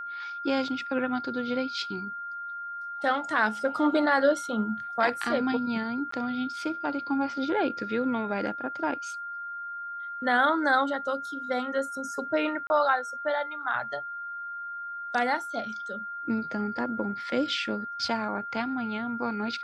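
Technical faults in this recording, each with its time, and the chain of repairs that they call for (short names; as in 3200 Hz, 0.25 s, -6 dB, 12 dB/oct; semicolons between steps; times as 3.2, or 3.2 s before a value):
tone 1400 Hz -34 dBFS
6.11–6.12 gap 14 ms
12.67–12.7 gap 30 ms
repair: notch 1400 Hz, Q 30; interpolate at 6.11, 14 ms; interpolate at 12.67, 30 ms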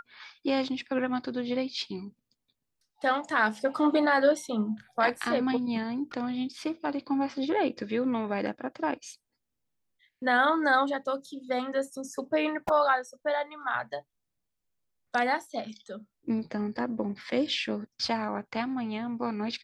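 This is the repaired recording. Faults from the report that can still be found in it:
none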